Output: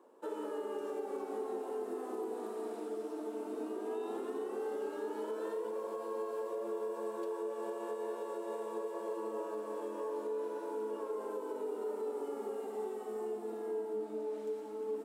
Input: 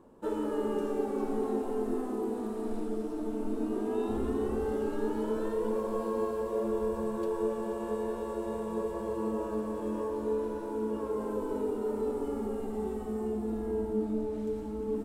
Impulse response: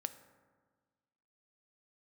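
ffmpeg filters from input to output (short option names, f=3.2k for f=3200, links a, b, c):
-af "highpass=f=340:w=0.5412,highpass=f=340:w=1.3066,alimiter=level_in=4.5dB:limit=-24dB:level=0:latency=1:release=185,volume=-4.5dB,volume=-2dB"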